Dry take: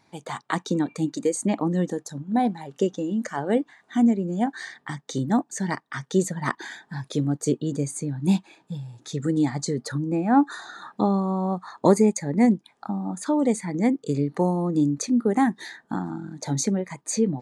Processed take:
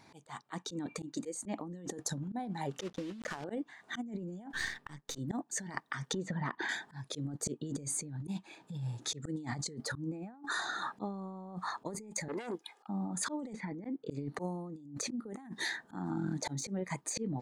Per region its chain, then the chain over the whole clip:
2.79–3.45 block floating point 3-bit + air absorption 81 m
4.53–5.18 half-wave gain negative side -7 dB + bell 710 Hz -4 dB 0.3 oct
6.13–6.69 LPF 2900 Hz + compressor 10:1, threshold -34 dBFS
12.28–12.88 HPF 460 Hz + comb 2.4 ms, depth 59% + core saturation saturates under 1700 Hz
13.53–14.11 HPF 170 Hz 6 dB/oct + air absorption 300 m + notch 1200 Hz, Q 27
whole clip: de-esser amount 55%; auto swell 0.421 s; negative-ratio compressor -37 dBFS, ratio -1; gain -3 dB

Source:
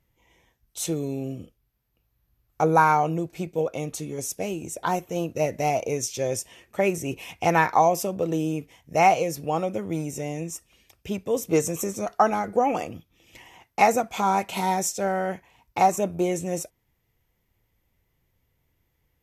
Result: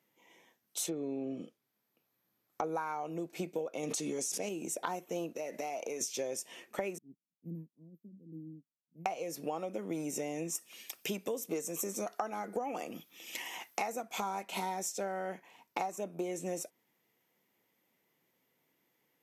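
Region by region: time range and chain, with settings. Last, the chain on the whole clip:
0.88–2.64 treble ducked by the level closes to 2500 Hz, closed at -25 dBFS + notch 2800 Hz, Q 15
3.83–4.49 LPF 7100 Hz + high shelf 5600 Hz +11 dB + fast leveller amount 100%
5.33–6.01 HPF 350 Hz 6 dB/oct + compressor, threshold -34 dBFS
6.98–9.06 inverse Chebyshev band-stop 730–9200 Hz, stop band 60 dB + low shelf 430 Hz -5.5 dB + upward expander 2.5:1, over -55 dBFS
10.55–14.41 high shelf 8100 Hz +6.5 dB + mismatched tape noise reduction encoder only
whole clip: HPF 200 Hz 24 dB/oct; compressor 12:1, threshold -33 dBFS

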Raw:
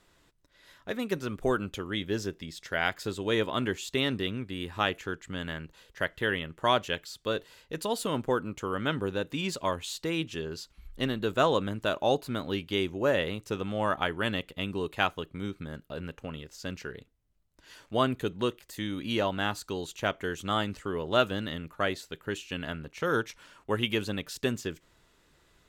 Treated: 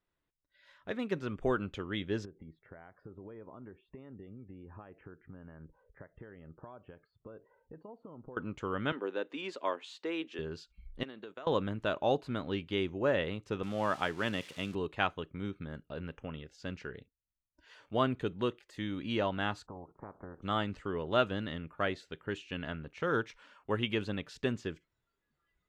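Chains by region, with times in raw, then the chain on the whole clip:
2.25–8.37 compressor 8:1, threshold -41 dBFS + LPF 1100 Hz
8.92–10.39 HPF 290 Hz 24 dB/oct + high shelf 4300 Hz -6.5 dB
11.03–11.47 expander -32 dBFS + HPF 280 Hz + compressor 10:1, threshold -38 dBFS
13.63–14.75 switching spikes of -28.5 dBFS + HPF 100 Hz
19.65–20.42 spectral limiter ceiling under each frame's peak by 18 dB + LPF 1100 Hz 24 dB/oct + compressor 16:1, threshold -37 dBFS
whole clip: LPF 7300 Hz 12 dB/oct; spectral noise reduction 18 dB; tone controls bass +1 dB, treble -9 dB; gain -3.5 dB

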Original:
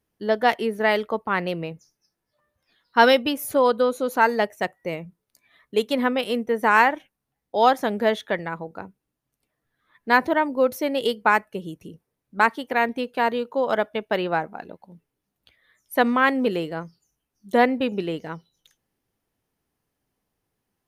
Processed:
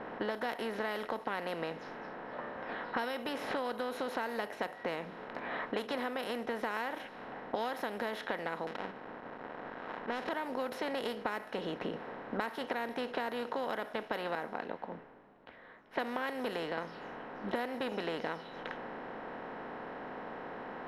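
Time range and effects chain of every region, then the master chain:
8.67–10.29 switching dead time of 0.29 ms + auto swell 0.385 s
14.35–16.78 notch 1300 Hz, Q 29 + three-band expander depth 100%
whole clip: per-bin compression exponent 0.4; low-pass opened by the level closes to 1500 Hz, open at -10.5 dBFS; compressor 8:1, threshold -26 dBFS; gain -7 dB

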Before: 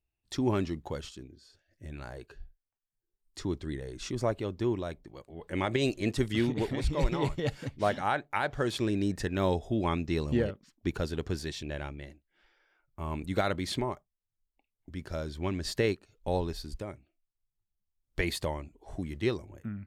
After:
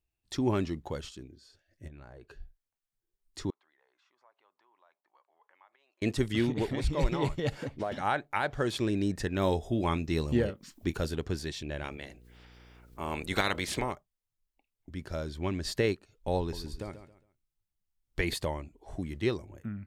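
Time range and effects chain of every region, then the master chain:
1.88–2.29 LPF 2000 Hz 6 dB/oct + compressor 5:1, threshold -46 dBFS
3.5–6.02 tilt +2 dB/oct + compressor, threshold -46 dBFS + ladder band-pass 1100 Hz, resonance 50%
7.52–7.92 bell 640 Hz +9 dB 2.8 oct + compressor 5:1, threshold -31 dBFS
9.41–11.15 high shelf 8300 Hz +8.5 dB + upward compressor, threshold -39 dBFS + doubler 25 ms -14 dB
11.83–13.91 spectral limiter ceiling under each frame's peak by 17 dB + upward compressor, threshold -50 dBFS + buzz 60 Hz, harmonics 8, -56 dBFS -6 dB/oct
16.39–18.34 bell 600 Hz -4.5 dB 0.23 oct + feedback echo 0.136 s, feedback 29%, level -11.5 dB
whole clip: dry

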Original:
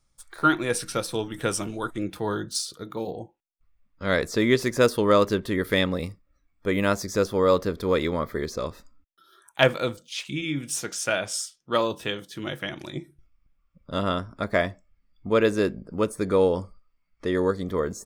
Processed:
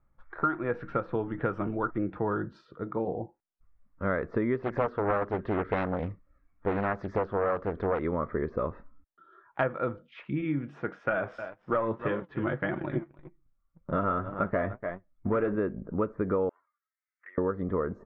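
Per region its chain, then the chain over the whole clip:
4.63–7.99 high shelf 2900 Hz +11.5 dB + Doppler distortion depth 0.87 ms
11.09–15.56 echo 0.294 s -17 dB + sample leveller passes 2 + flange 1.8 Hz, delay 5 ms, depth 4.1 ms, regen +51%
16.49–17.38 Butterworth band-pass 1800 Hz, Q 2.7 + envelope flanger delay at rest 4 ms, full sweep at -38.5 dBFS
whole clip: LPF 1700 Hz 24 dB/oct; dynamic EQ 1300 Hz, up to +5 dB, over -41 dBFS, Q 5.5; compressor 6:1, threshold -27 dBFS; gain +2 dB

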